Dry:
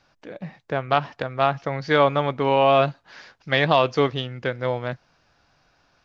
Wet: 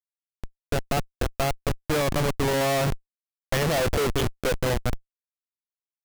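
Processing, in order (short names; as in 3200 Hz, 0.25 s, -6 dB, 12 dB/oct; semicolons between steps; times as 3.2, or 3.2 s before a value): 3.65–4.57 ten-band EQ 125 Hz -3 dB, 500 Hz +10 dB, 1000 Hz -8 dB, 2000 Hz +5 dB, 4000 Hz +6 dB; feedback echo 0.213 s, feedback 55%, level -19 dB; Schmitt trigger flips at -24 dBFS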